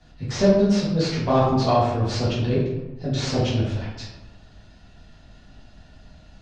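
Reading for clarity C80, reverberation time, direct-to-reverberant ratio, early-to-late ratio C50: 4.5 dB, 1.1 s, -9.0 dB, 1.5 dB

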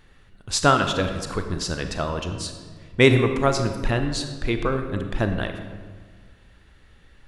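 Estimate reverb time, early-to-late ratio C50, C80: 1.6 s, 7.5 dB, 9.0 dB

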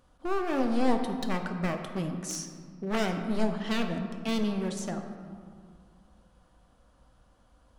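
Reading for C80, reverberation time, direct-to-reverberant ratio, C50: 7.5 dB, 2.0 s, 4.5 dB, 6.5 dB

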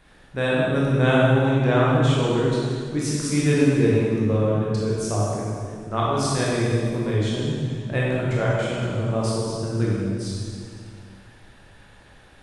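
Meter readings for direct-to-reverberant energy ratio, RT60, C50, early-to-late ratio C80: -6.0 dB, 2.1 s, -3.0 dB, -0.5 dB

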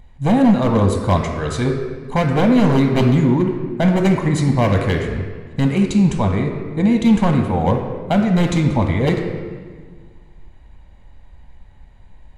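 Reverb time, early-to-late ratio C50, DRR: 1.6 s, 4.5 dB, 2.5 dB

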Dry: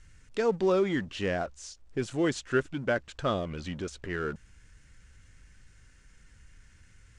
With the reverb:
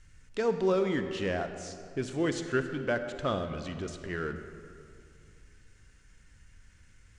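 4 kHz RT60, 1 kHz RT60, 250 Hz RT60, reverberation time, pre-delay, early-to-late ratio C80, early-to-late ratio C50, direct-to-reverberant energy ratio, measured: 1.4 s, 2.3 s, 2.7 s, 2.4 s, 35 ms, 9.5 dB, 8.5 dB, 8.0 dB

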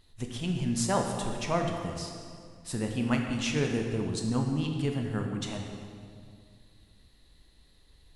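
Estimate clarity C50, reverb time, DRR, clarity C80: 3.5 dB, 2.2 s, 2.0 dB, 5.0 dB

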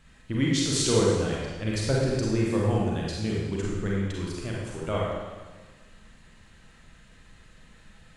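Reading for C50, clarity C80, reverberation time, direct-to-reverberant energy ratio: -2.0 dB, 1.0 dB, 1.4 s, -4.5 dB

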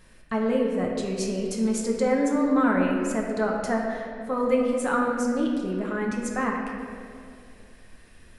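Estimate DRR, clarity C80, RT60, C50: -1.5 dB, 3.5 dB, 2.4 s, 2.0 dB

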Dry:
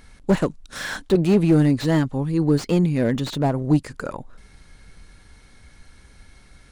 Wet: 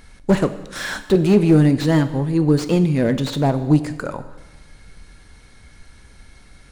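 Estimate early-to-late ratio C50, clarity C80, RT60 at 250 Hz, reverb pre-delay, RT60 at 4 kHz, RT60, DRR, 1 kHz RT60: 13.0 dB, 14.5 dB, 1.2 s, 5 ms, 1.1 s, 1.2 s, 10.5 dB, 1.2 s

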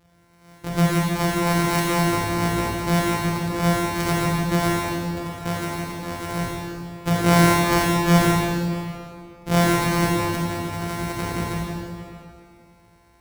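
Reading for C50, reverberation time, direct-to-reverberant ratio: -2.5 dB, 2.4 s, -5.0 dB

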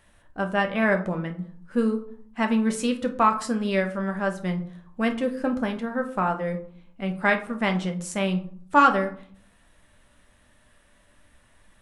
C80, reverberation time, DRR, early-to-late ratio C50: 17.0 dB, 0.55 s, 4.5 dB, 12.0 dB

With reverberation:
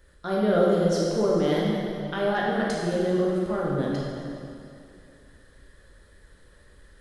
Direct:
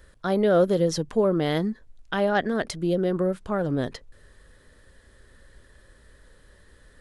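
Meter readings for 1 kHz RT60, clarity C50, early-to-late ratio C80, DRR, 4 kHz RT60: 2.5 s, -1.5 dB, 0.5 dB, -4.5 dB, 2.2 s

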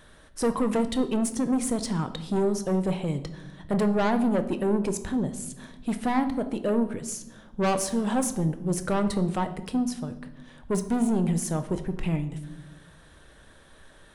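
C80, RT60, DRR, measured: 15.0 dB, 1.0 s, 8.5 dB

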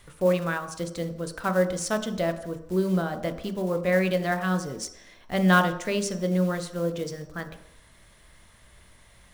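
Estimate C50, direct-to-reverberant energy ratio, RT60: 11.5 dB, 7.5 dB, 0.70 s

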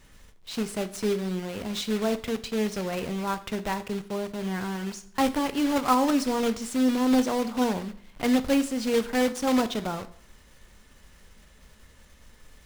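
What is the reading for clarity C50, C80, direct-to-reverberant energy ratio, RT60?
16.0 dB, 19.5 dB, 11.5 dB, 0.60 s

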